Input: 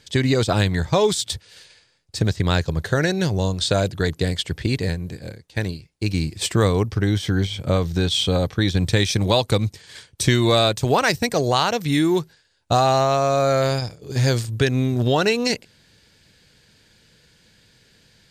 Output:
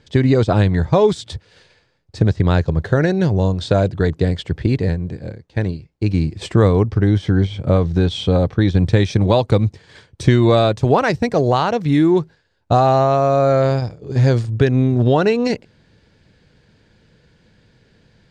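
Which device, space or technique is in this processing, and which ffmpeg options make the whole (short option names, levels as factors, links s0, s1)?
through cloth: -af "lowpass=7300,highshelf=f=2000:g=-15,volume=1.88"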